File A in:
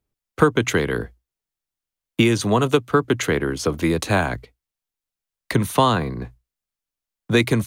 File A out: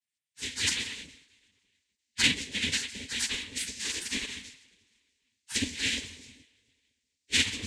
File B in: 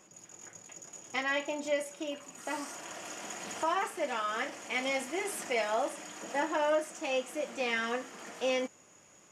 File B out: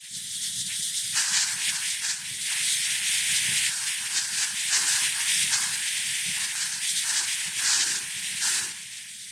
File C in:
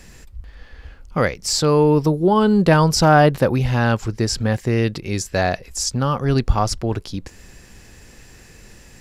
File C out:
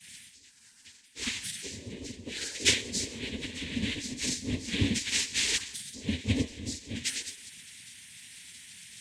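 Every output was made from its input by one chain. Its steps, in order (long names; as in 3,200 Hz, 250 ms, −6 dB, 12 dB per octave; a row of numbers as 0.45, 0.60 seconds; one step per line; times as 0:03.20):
every partial snapped to a pitch grid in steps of 2 semitones
Chebyshev band-stop filter 160–2,600 Hz, order 5
treble cut that deepens with the level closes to 1,400 Hz, closed at −17.5 dBFS
coupled-rooms reverb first 0.47 s, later 1.8 s, from −19 dB, DRR −1 dB
cochlear-implant simulation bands 6
gate on every frequency bin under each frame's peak −10 dB weak
expander for the loud parts 1.5 to 1, over −39 dBFS
normalise the peak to −9 dBFS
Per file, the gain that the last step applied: +5.5, +18.5, +6.5 decibels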